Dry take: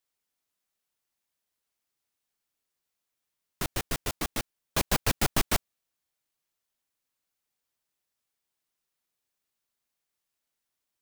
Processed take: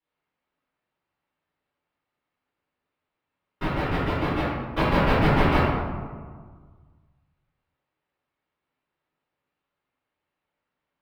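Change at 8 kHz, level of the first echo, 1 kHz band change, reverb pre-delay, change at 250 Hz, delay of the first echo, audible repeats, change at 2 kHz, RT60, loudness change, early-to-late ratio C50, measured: below −20 dB, no echo audible, +10.5 dB, 3 ms, +11.5 dB, no echo audible, no echo audible, +7.0 dB, 1.7 s, +6.0 dB, −2.0 dB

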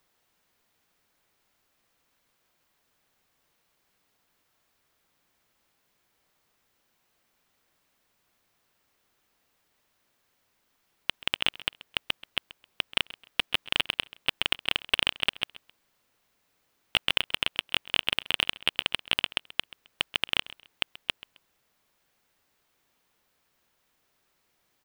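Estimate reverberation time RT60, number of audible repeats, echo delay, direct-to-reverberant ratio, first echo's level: no reverb audible, 2, 132 ms, no reverb audible, −19.0 dB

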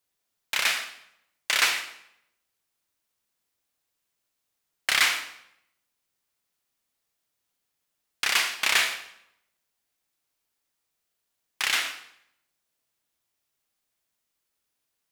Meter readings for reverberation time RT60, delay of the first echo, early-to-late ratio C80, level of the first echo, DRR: 0.75 s, no echo audible, 12.0 dB, no echo audible, 7.0 dB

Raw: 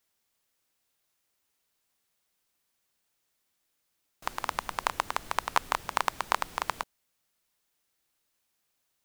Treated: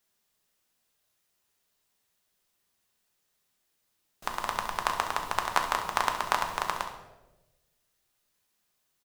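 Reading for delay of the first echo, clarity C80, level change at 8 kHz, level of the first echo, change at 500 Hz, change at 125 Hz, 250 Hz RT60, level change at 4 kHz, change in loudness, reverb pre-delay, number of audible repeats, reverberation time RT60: 67 ms, 10.0 dB, +1.5 dB, −12.0 dB, +2.5 dB, +2.5 dB, 1.2 s, +2.0 dB, +2.0 dB, 5 ms, 1, 1.1 s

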